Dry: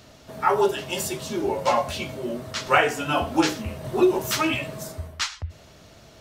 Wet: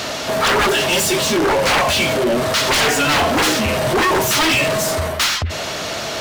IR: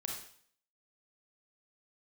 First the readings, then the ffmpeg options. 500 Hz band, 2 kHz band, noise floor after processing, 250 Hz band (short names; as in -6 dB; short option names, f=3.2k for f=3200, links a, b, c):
+7.0 dB, +11.5 dB, -25 dBFS, +5.5 dB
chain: -filter_complex "[0:a]aeval=exprs='0.596*sin(PI/2*7.94*val(0)/0.596)':c=same,asplit=2[a][b];[b]highpass=f=720:p=1,volume=23dB,asoftclip=type=tanh:threshold=-4dB[c];[a][c]amix=inputs=2:normalize=0,lowpass=f=6.5k:p=1,volume=-6dB,volume=-8dB"